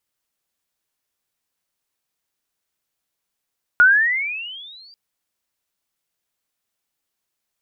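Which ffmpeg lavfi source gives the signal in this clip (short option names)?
-f lavfi -i "aevalsrc='pow(10,(-7-37.5*t/1.14)/20)*sin(2*PI*1420*1.14/(21*log(2)/12)*(exp(21*log(2)/12*t/1.14)-1))':d=1.14:s=44100"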